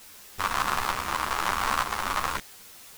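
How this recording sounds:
tremolo saw up 1.1 Hz, depth 30%
a quantiser's noise floor 8 bits, dither triangular
a shimmering, thickened sound

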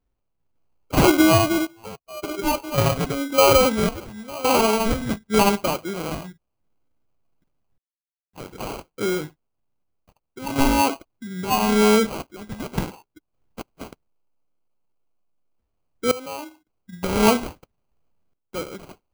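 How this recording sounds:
phaser sweep stages 2, 0.93 Hz, lowest notch 420–4,600 Hz
sample-and-hold tremolo 1.8 Hz, depth 100%
aliases and images of a low sample rate 1,800 Hz, jitter 0%

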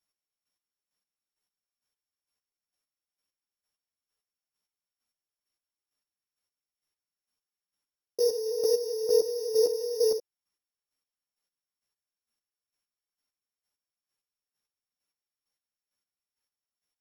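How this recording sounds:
a buzz of ramps at a fixed pitch in blocks of 8 samples
chopped level 2.2 Hz, depth 65%, duty 25%
a shimmering, thickened sound

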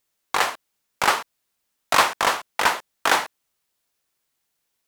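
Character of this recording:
background noise floor −76 dBFS
spectral slope −2.0 dB per octave

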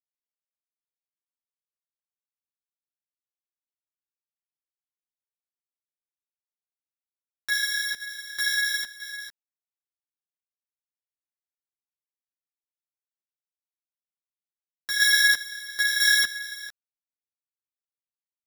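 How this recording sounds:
a buzz of ramps at a fixed pitch in blocks of 8 samples
tremolo saw down 1 Hz, depth 60%
a quantiser's noise floor 12 bits, dither none
a shimmering, thickened sound

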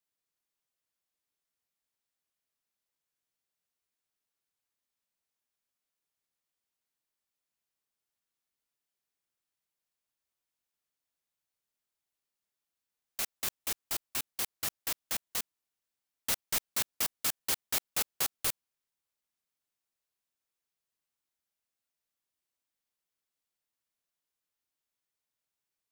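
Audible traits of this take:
background noise floor −89 dBFS
spectral slope 0.0 dB per octave

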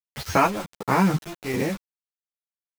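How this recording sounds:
chopped level 1.3 Hz, depth 65%, duty 60%
a quantiser's noise floor 6 bits, dither none
a shimmering, thickened sound

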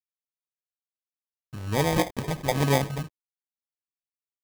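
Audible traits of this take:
a quantiser's noise floor 8 bits, dither none
phaser sweep stages 4, 2.3 Hz, lowest notch 310–1,800 Hz
aliases and images of a low sample rate 1,400 Hz, jitter 0%

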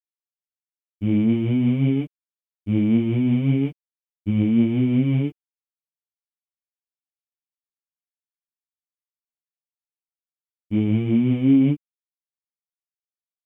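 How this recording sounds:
tremolo triangle 5.5 Hz, depth 35%
a quantiser's noise floor 12 bits, dither none
a shimmering, thickened sound

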